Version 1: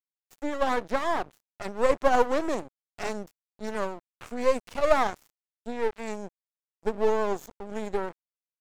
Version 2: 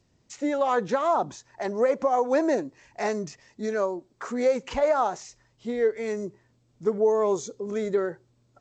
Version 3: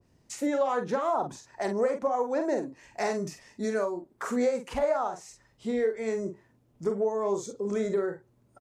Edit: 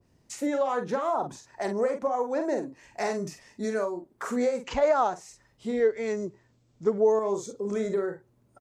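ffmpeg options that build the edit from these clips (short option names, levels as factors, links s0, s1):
-filter_complex "[1:a]asplit=2[s0][s1];[2:a]asplit=3[s2][s3][s4];[s2]atrim=end=4.642[s5];[s0]atrim=start=4.638:end=5.142[s6];[s3]atrim=start=5.138:end=5.802[s7];[s1]atrim=start=5.798:end=7.192[s8];[s4]atrim=start=7.188[s9];[s5][s6]acrossfade=d=0.004:c1=hsin:c2=hsin[s10];[s10][s7]acrossfade=d=0.004:c1=hsin:c2=hsin[s11];[s11][s8]acrossfade=d=0.004:c1=hsin:c2=hsin[s12];[s12][s9]acrossfade=d=0.004:c1=hsin:c2=hsin"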